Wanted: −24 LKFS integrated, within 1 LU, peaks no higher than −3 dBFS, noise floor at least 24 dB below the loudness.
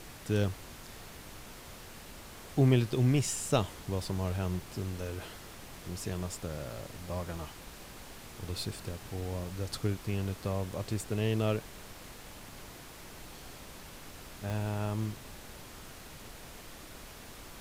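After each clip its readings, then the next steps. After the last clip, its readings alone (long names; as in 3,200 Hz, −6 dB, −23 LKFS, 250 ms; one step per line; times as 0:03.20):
number of dropouts 6; longest dropout 1.3 ms; background noise floor −49 dBFS; target noise floor −58 dBFS; integrated loudness −34.0 LKFS; sample peak −14.0 dBFS; target loudness −24.0 LKFS
→ repair the gap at 0:06.35/0:07.24/0:09.25/0:10.25/0:11.02/0:14.50, 1.3 ms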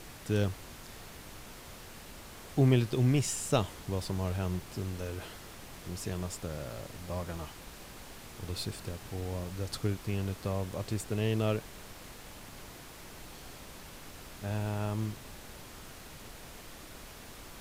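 number of dropouts 0; background noise floor −49 dBFS; target noise floor −58 dBFS
→ noise reduction from a noise print 9 dB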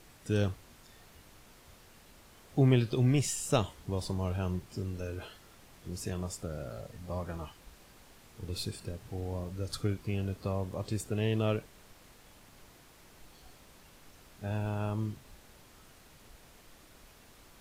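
background noise floor −58 dBFS; integrated loudness −34.0 LKFS; sample peak −14.0 dBFS; target loudness −24.0 LKFS
→ level +10 dB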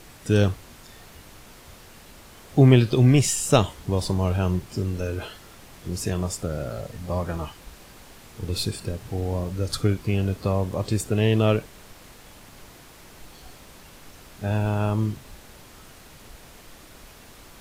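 integrated loudness −24.0 LKFS; sample peak −4.0 dBFS; background noise floor −48 dBFS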